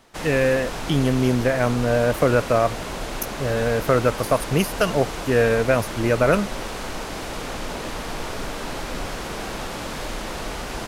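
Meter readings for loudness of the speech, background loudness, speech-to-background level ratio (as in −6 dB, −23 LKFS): −21.0 LKFS, −31.0 LKFS, 10.0 dB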